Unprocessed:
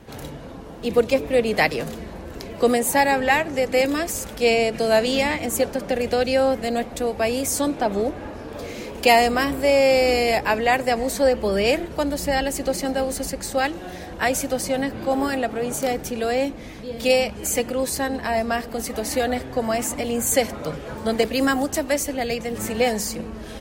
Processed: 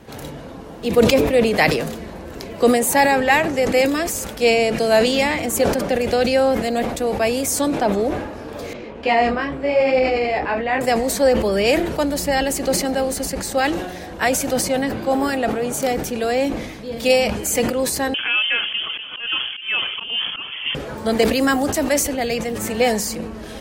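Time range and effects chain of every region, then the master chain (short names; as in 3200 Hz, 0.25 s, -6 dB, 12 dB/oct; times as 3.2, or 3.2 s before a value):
8.73–10.81 LPF 2700 Hz + detuned doubles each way 27 cents
18.14–20.75 inverted band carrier 3300 Hz + auto swell 0.202 s
whole clip: low shelf 77 Hz -5.5 dB; sustainer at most 55 dB/s; gain +2.5 dB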